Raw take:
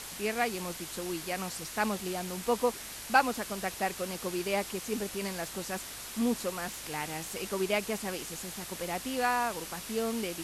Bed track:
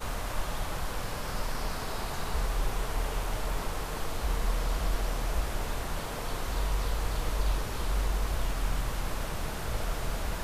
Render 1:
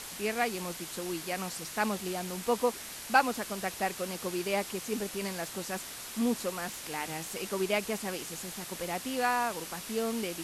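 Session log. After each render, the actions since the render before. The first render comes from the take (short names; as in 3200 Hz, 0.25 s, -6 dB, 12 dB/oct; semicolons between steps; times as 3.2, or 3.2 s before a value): de-hum 50 Hz, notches 3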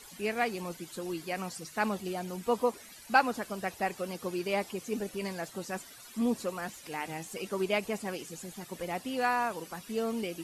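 denoiser 14 dB, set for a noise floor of -43 dBFS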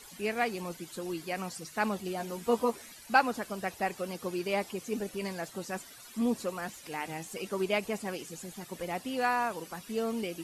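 2.18–2.92 doubler 13 ms -3.5 dB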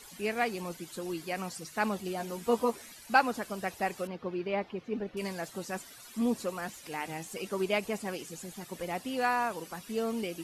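4.07–5.17 air absorption 310 m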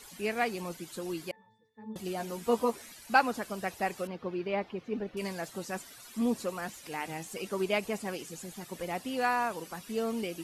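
1.31–1.96 octave resonator A, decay 0.5 s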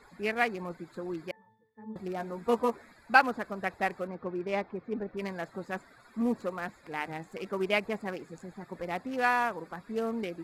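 Wiener smoothing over 15 samples; bell 1900 Hz +5.5 dB 1.6 oct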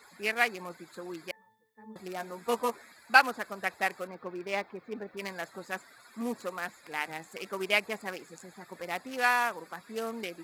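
HPF 55 Hz; tilt +3 dB/oct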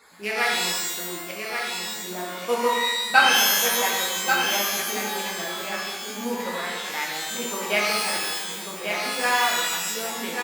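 on a send: echo 1.138 s -6 dB; on the sum: shimmer reverb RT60 1.2 s, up +12 st, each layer -2 dB, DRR -2.5 dB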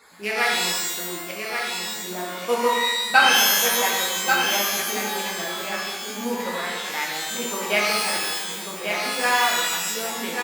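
gain +1.5 dB; limiter -3 dBFS, peak gain reduction 1.5 dB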